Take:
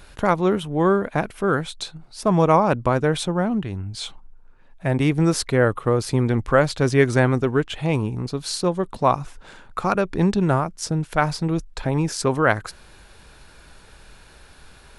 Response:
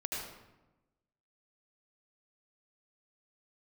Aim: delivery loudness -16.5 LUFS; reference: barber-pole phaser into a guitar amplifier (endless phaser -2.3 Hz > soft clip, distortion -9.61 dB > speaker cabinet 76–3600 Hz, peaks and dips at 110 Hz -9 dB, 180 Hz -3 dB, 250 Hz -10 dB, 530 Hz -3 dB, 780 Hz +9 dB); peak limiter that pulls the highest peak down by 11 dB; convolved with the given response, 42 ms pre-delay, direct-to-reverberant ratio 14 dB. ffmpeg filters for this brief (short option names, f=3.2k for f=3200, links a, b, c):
-filter_complex "[0:a]alimiter=limit=-13.5dB:level=0:latency=1,asplit=2[a][b];[1:a]atrim=start_sample=2205,adelay=42[c];[b][c]afir=irnorm=-1:irlink=0,volume=-17dB[d];[a][d]amix=inputs=2:normalize=0,asplit=2[e][f];[f]afreqshift=-2.3[g];[e][g]amix=inputs=2:normalize=1,asoftclip=threshold=-27dB,highpass=76,equalizer=f=110:t=q:w=4:g=-9,equalizer=f=180:t=q:w=4:g=-3,equalizer=f=250:t=q:w=4:g=-10,equalizer=f=530:t=q:w=4:g=-3,equalizer=f=780:t=q:w=4:g=9,lowpass=f=3.6k:w=0.5412,lowpass=f=3.6k:w=1.3066,volume=18.5dB"